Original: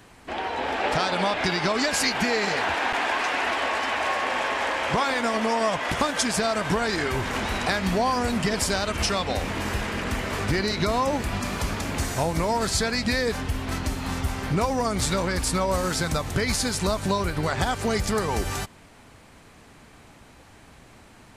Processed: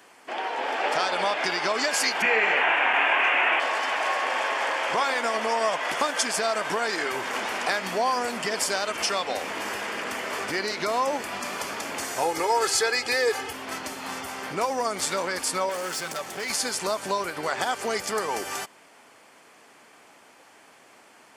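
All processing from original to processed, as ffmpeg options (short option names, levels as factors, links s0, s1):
-filter_complex "[0:a]asettb=1/sr,asplit=3[s0][s1][s2];[s0]atrim=end=2.224[s3];[s1]atrim=start=2.22:end=3.6,asetpts=PTS-STARTPTS,afade=t=in:d=0.004:c=qsin,afade=t=out:st=1.376:d=0.004:c=qsin,lowpass=11000,highshelf=f=3500:t=q:w=3:g=-10,asplit=2[s4][s5];[s5]adelay=27,volume=0.562[s6];[s4][s6]amix=inputs=2:normalize=0,atrim=end_sample=60858[s7];[s2]atrim=start=3.596[s8];[s3][s7]acrossfade=d=0.004:c1=hsin:c2=qsin[s9];[s9][s8]acrossfade=d=0.004:c1=qsin:c2=hsin,asettb=1/sr,asplit=3[s10][s11][s12];[s10]atrim=end=12.224[s13];[s11]atrim=start=12.22:end=13.53,asetpts=PTS-STARTPTS,afade=t=in:d=0.004:c=qsin,afade=t=out:st=1.306:d=0.004:c=qsin,highpass=47,bandreject=f=3900:w=25,aecho=1:1:2.4:0.94,atrim=end_sample=57771[s14];[s12]atrim=start=13.526[s15];[s13][s14]acrossfade=d=0.004:c1=hsin:c2=qsin[s16];[s16][s15]acrossfade=d=0.004:c1=qsin:c2=hsin,asettb=1/sr,asplit=3[s17][s18][s19];[s17]atrim=end=15.694[s20];[s18]atrim=start=15.69:end=16.5,asetpts=PTS-STARTPTS,afade=t=in:d=0.004:c=qsin,afade=t=out:st=0.806:d=0.004:c=qsin,aecho=1:1:5.3:0.42,atrim=end_sample=35721,volume=21.1,asoftclip=hard,volume=0.0473[s21];[s19]atrim=start=16.496[s22];[s20][s21]acrossfade=d=0.004:c1=hsin:c2=qsin[s23];[s23][s22]acrossfade=d=0.004:c1=qsin:c2=hsin,highpass=410,bandreject=f=3900:w=9.4"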